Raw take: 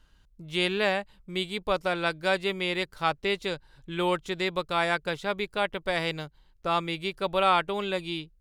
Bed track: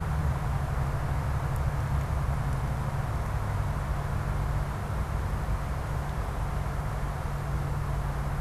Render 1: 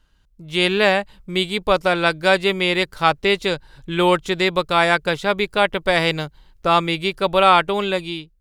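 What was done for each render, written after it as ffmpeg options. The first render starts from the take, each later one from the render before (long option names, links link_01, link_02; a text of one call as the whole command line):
ffmpeg -i in.wav -af "dynaudnorm=framelen=110:gausssize=9:maxgain=11.5dB" out.wav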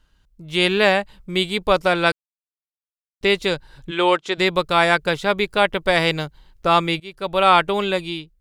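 ffmpeg -i in.wav -filter_complex "[0:a]asplit=3[link_01][link_02][link_03];[link_01]afade=type=out:start_time=3.9:duration=0.02[link_04];[link_02]highpass=330,lowpass=6600,afade=type=in:start_time=3.9:duration=0.02,afade=type=out:start_time=4.37:duration=0.02[link_05];[link_03]afade=type=in:start_time=4.37:duration=0.02[link_06];[link_04][link_05][link_06]amix=inputs=3:normalize=0,asplit=4[link_07][link_08][link_09][link_10];[link_07]atrim=end=2.12,asetpts=PTS-STARTPTS,afade=type=out:start_time=2.116:duration=0.004:curve=hsin[link_11];[link_08]atrim=start=2.12:end=3.21,asetpts=PTS-STARTPTS,volume=0[link_12];[link_09]atrim=start=3.21:end=7,asetpts=PTS-STARTPTS,afade=type=in:duration=0.004:curve=hsin,afade=type=out:start_time=3.786:duration=0.004:curve=hsin:silence=0.0668344[link_13];[link_10]atrim=start=7,asetpts=PTS-STARTPTS,afade=type=in:duration=0.56:silence=0.0668344[link_14];[link_11][link_12][link_13][link_14]concat=n=4:v=0:a=1" out.wav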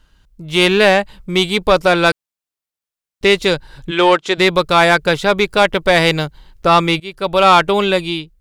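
ffmpeg -i in.wav -af "acontrast=84" out.wav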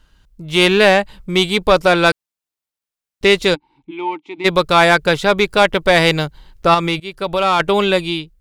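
ffmpeg -i in.wav -filter_complex "[0:a]asplit=3[link_01][link_02][link_03];[link_01]afade=type=out:start_time=3.54:duration=0.02[link_04];[link_02]asplit=3[link_05][link_06][link_07];[link_05]bandpass=frequency=300:width_type=q:width=8,volume=0dB[link_08];[link_06]bandpass=frequency=870:width_type=q:width=8,volume=-6dB[link_09];[link_07]bandpass=frequency=2240:width_type=q:width=8,volume=-9dB[link_10];[link_08][link_09][link_10]amix=inputs=3:normalize=0,afade=type=in:start_time=3.54:duration=0.02,afade=type=out:start_time=4.44:duration=0.02[link_11];[link_03]afade=type=in:start_time=4.44:duration=0.02[link_12];[link_04][link_11][link_12]amix=inputs=3:normalize=0,asettb=1/sr,asplit=3[link_13][link_14][link_15];[link_13]atrim=end=6.744[link_16];[link_14]atrim=start=6.74:end=7.6,asetpts=PTS-STARTPTS,afade=type=in:duration=0.004:curve=qsin,afade=type=out:start_time=0.856:duration=0.004:curve=qsin,acompressor=threshold=-16dB:ratio=2:attack=3.2:release=140:knee=1:detection=peak[link_17];[link_15]atrim=start=7.596[link_18];[link_16][link_17]acrossfade=duration=0.004:curve1=hsin:curve2=qsin[link_19];[link_19][link_18]acrossfade=duration=0.004:curve1=qsin:curve2=hsin" out.wav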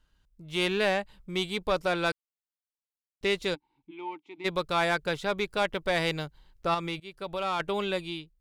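ffmpeg -i in.wav -af "volume=-15dB" out.wav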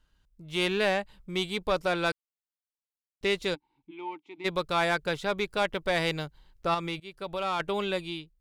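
ffmpeg -i in.wav -af anull out.wav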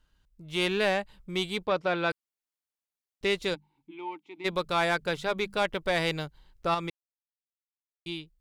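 ffmpeg -i in.wav -filter_complex "[0:a]asplit=3[link_01][link_02][link_03];[link_01]afade=type=out:start_time=1.65:duration=0.02[link_04];[link_02]highpass=100,lowpass=3600,afade=type=in:start_time=1.65:duration=0.02,afade=type=out:start_time=2.1:duration=0.02[link_05];[link_03]afade=type=in:start_time=2.1:duration=0.02[link_06];[link_04][link_05][link_06]amix=inputs=3:normalize=0,asettb=1/sr,asplit=3[link_07][link_08][link_09];[link_07]atrim=end=3.494[link_10];[link_08]atrim=start=3.49:end=5.55,asetpts=PTS-STARTPTS,afade=type=in:duration=0.004:curve=qsin,afade=type=out:start_time=2.056:duration=0.004:curve=qsin,bandreject=frequency=50:width_type=h:width=6,bandreject=frequency=100:width_type=h:width=6,bandreject=frequency=150:width_type=h:width=6,bandreject=frequency=200:width_type=h:width=6,bandreject=frequency=250:width_type=h:width=6[link_11];[link_09]atrim=start=5.546[link_12];[link_10][link_11]acrossfade=duration=0.004:curve1=hsin:curve2=qsin[link_13];[link_13][link_12]acrossfade=duration=0.004:curve1=qsin:curve2=hsin,asplit=3[link_14][link_15][link_16];[link_14]atrim=end=6.9,asetpts=PTS-STARTPTS,afade=type=out:start_time=6.896:duration=0.004:curve=hsin[link_17];[link_15]atrim=start=6.9:end=8.06,asetpts=PTS-STARTPTS,volume=0[link_18];[link_16]atrim=start=8.06,asetpts=PTS-STARTPTS,afade=type=in:duration=0.004:curve=hsin[link_19];[link_17][link_18][link_19]concat=n=3:v=0:a=1" out.wav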